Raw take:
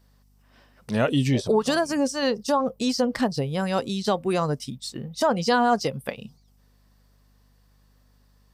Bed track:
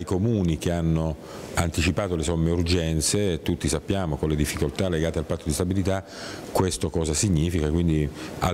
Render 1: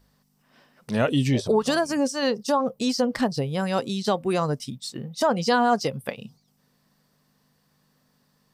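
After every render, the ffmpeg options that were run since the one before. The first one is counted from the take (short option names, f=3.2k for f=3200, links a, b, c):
-af "bandreject=f=50:t=h:w=4,bandreject=f=100:t=h:w=4"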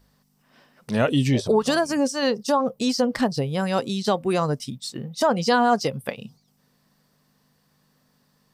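-af "volume=1.5dB"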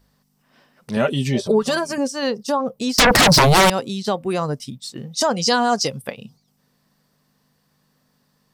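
-filter_complex "[0:a]asettb=1/sr,asplit=3[a][b][c];[a]atrim=end=0.964[d];[b]atrim=start=0.96:end=1.98,asetpts=PTS-STARTPTS,afade=t=in:d=0.004:c=qsin,afade=t=out:st=1.016:d=0.004:c=qsin,aecho=1:1:5.1:0.65,atrim=end_sample=44982[e];[c]atrim=start=1.976[f];[d][e]acrossfade=d=0.004:c1=hsin:c2=qsin[g];[g][f]acrossfade=d=0.004:c1=qsin:c2=hsin,asettb=1/sr,asplit=3[h][i][j];[h]atrim=end=2.984[k];[i]atrim=start=2.98:end=3.7,asetpts=PTS-STARTPTS,afade=t=in:d=0.004:c=qsin,afade=t=out:st=0.716:d=0.004:c=qsin,aeval=exprs='0.355*sin(PI/2*10*val(0)/0.355)':c=same[l];[j]atrim=start=3.696[m];[k][l]acrossfade=d=0.004:c1=hsin:c2=qsin[n];[n][m]acrossfade=d=0.004:c1=qsin:c2=hsin,asettb=1/sr,asplit=3[o][p][q];[o]atrim=end=4.974[r];[p]atrim=start=4.97:end=6.02,asetpts=PTS-STARTPTS,afade=t=in:d=0.004:c=qsin,afade=t=out:st=1.046:d=0.004:c=qsin,equalizer=f=6.4k:w=0.79:g=12[s];[q]atrim=start=6.016[t];[r][s]acrossfade=d=0.004:c1=hsin:c2=qsin[u];[u][t]acrossfade=d=0.004:c1=qsin:c2=hsin"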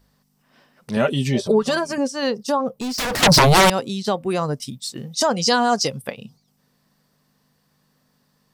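-filter_complex "[0:a]asettb=1/sr,asplit=3[a][b][c];[a]atrim=end=1.534[d];[b]atrim=start=1.53:end=2.19,asetpts=PTS-STARTPTS,afade=t=in:d=0.004:c=qsin,afade=t=out:st=0.656:d=0.004:c=qsin,highshelf=f=9.2k:g=-7.5[e];[c]atrim=start=2.186[f];[d][e]acrossfade=d=0.004:c1=hsin:c2=qsin[g];[g][f]acrossfade=d=0.004:c1=qsin:c2=hsin,asettb=1/sr,asplit=3[h][i][j];[h]atrim=end=2.694[k];[i]atrim=start=2.69:end=3.23,asetpts=PTS-STARTPTS,afade=t=in:d=0.004:c=qsin,afade=t=out:st=0.536:d=0.004:c=qsin,asoftclip=type=hard:threshold=-23dB[l];[j]atrim=start=3.226[m];[k][l]acrossfade=d=0.004:c1=hsin:c2=qsin[n];[n][m]acrossfade=d=0.004:c1=qsin:c2=hsin,asettb=1/sr,asplit=3[o][p][q];[o]atrim=end=4.624[r];[p]atrim=start=4.62:end=5.15,asetpts=PTS-STARTPTS,afade=t=in:d=0.004:c=qsin,afade=t=out:st=0.526:d=0.004:c=qsin,highshelf=f=4.8k:g=6.5[s];[q]atrim=start=5.146[t];[r][s]acrossfade=d=0.004:c1=hsin:c2=qsin[u];[u][t]acrossfade=d=0.004:c1=qsin:c2=hsin"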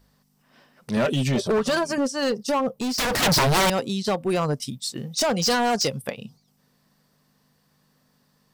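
-af "asoftclip=type=hard:threshold=-18dB"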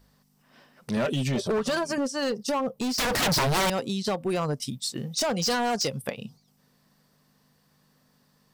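-af "acompressor=threshold=-27dB:ratio=2"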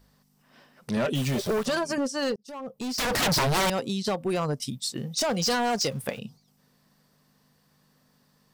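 -filter_complex "[0:a]asettb=1/sr,asplit=3[a][b][c];[a]atrim=end=1.154[d];[b]atrim=start=1.15:end=1.66,asetpts=PTS-STARTPTS,afade=t=in:d=0.004:c=qsin,afade=t=out:st=0.506:d=0.004:c=qsin,acrusher=bits=7:dc=4:mix=0:aa=0.000001[e];[c]atrim=start=1.656[f];[d][e]acrossfade=d=0.004:c1=hsin:c2=qsin[g];[g][f]acrossfade=d=0.004:c1=qsin:c2=hsin,asettb=1/sr,asplit=3[h][i][j];[h]atrim=end=5.294[k];[i]atrim=start=5.29:end=6.19,asetpts=PTS-STARTPTS,afade=t=in:d=0.004:c=qsin,afade=t=out:st=0.896:d=0.004:c=qsin,aeval=exprs='val(0)+0.5*0.00631*sgn(val(0))':c=same[l];[j]atrim=start=6.186[m];[k][l]acrossfade=d=0.004:c1=hsin:c2=qsin[n];[n][m]acrossfade=d=0.004:c1=qsin:c2=hsin,asplit=2[o][p];[o]atrim=end=2.36,asetpts=PTS-STARTPTS,afade=t=out:st=2.356:d=0.004:c=hsin[q];[p]atrim=start=2.36,asetpts=PTS-STARTPTS,afade=t=in:d=0.78[r];[q][r]concat=n=2:v=0:a=1"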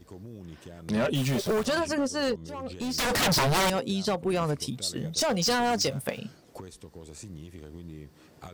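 -filter_complex "[1:a]volume=-21dB[a];[0:a][a]amix=inputs=2:normalize=0"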